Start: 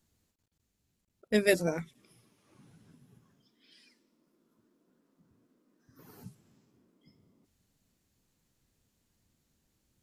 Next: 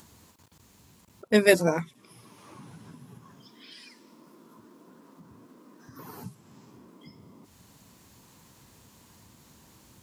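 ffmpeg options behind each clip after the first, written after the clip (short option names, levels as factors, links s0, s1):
-filter_complex "[0:a]highpass=76,equalizer=f=1000:t=o:w=0.49:g=9.5,asplit=2[s0][s1];[s1]acompressor=mode=upward:threshold=0.0112:ratio=2.5,volume=0.944[s2];[s0][s2]amix=inputs=2:normalize=0"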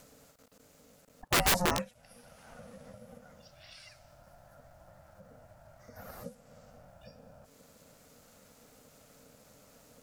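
-af "equalizer=f=3500:w=6.2:g=-6.5,aeval=exprs='(mod(6.31*val(0)+1,2)-1)/6.31':c=same,aeval=exprs='val(0)*sin(2*PI*360*n/s)':c=same"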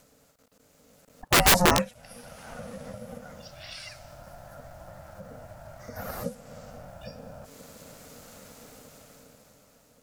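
-af "dynaudnorm=f=280:g=9:m=4.73,volume=0.75"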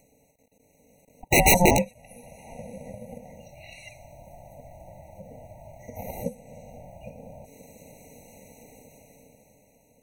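-filter_complex "[0:a]asplit=2[s0][s1];[s1]aeval=exprs='sgn(val(0))*max(abs(val(0))-0.0211,0)':c=same,volume=0.596[s2];[s0][s2]amix=inputs=2:normalize=0,asuperstop=centerf=4800:order=8:qfactor=3.2,afftfilt=real='re*eq(mod(floor(b*sr/1024/960),2),0)':imag='im*eq(mod(floor(b*sr/1024/960),2),0)':win_size=1024:overlap=0.75"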